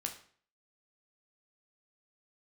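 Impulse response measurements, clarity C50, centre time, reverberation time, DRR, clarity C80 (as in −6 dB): 10.0 dB, 15 ms, 0.50 s, 2.5 dB, 14.5 dB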